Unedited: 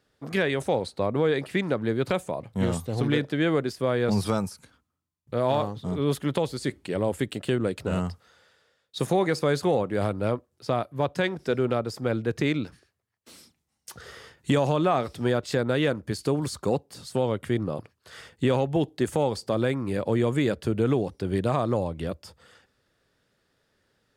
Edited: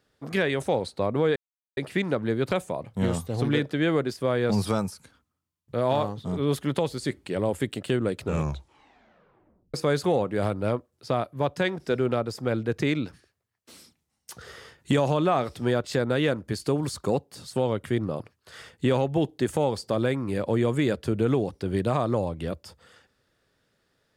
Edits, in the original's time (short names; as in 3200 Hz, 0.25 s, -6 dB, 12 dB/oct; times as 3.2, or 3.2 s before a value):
1.36 insert silence 0.41 s
7.8 tape stop 1.53 s